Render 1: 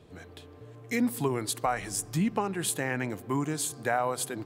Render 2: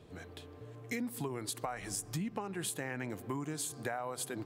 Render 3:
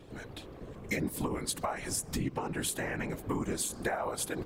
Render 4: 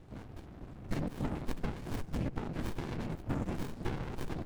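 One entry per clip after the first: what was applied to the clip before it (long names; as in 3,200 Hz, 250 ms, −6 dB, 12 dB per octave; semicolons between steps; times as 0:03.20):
downward compressor, threshold −33 dBFS, peak gain reduction 10.5 dB; level −1.5 dB
random phases in short frames; level +4.5 dB
dynamic equaliser 3,500 Hz, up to +4 dB, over −46 dBFS, Q 0.78; windowed peak hold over 65 samples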